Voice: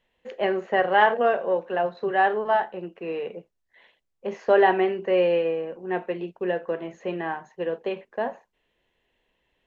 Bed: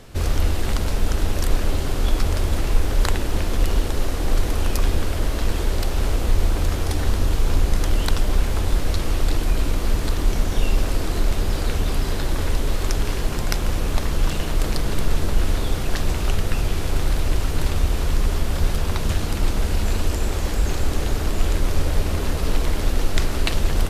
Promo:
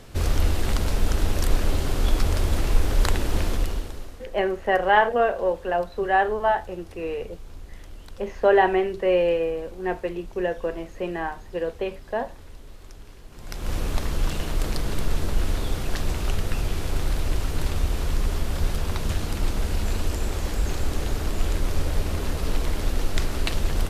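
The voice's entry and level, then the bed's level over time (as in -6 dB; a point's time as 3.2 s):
3.95 s, +0.5 dB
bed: 3.48 s -1.5 dB
4.32 s -22.5 dB
13.29 s -22.5 dB
13.73 s -4 dB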